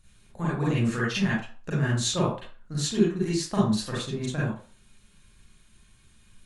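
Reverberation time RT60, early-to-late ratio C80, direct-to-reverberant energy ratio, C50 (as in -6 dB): 0.40 s, 7.5 dB, -8.5 dB, 0.5 dB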